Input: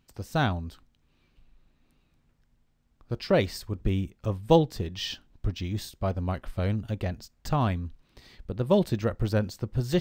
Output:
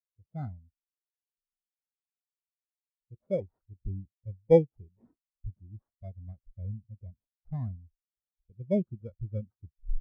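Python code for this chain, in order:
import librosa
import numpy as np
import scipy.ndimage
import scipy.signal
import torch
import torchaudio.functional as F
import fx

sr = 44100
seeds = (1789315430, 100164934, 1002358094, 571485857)

y = fx.tape_stop_end(x, sr, length_s=0.45)
y = fx.sample_hold(y, sr, seeds[0], rate_hz=2800.0, jitter_pct=0)
y = fx.spectral_expand(y, sr, expansion=2.5)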